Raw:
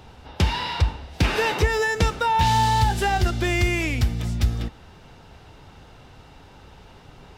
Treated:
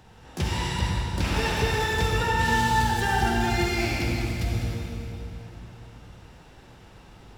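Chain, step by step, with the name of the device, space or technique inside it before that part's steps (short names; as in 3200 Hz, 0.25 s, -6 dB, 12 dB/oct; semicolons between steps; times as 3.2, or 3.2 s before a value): shimmer-style reverb (harmoniser +12 st -6 dB; reverb RT60 3.3 s, pre-delay 46 ms, DRR -3.5 dB); gain -8.5 dB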